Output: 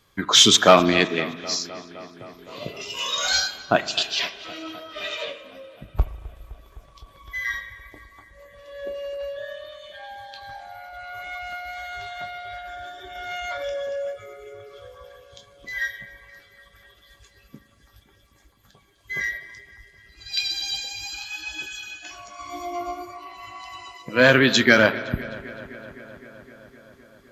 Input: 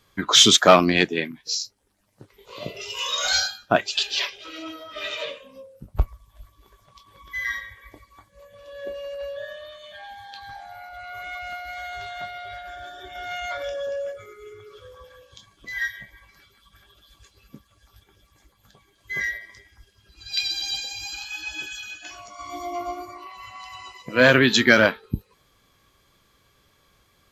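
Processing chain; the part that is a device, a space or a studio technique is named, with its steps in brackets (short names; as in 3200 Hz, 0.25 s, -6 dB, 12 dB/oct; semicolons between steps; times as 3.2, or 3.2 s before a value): dub delay into a spring reverb (darkening echo 0.257 s, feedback 78%, low-pass 4200 Hz, level -19 dB; spring tank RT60 1.6 s, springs 37 ms, chirp 60 ms, DRR 15 dB)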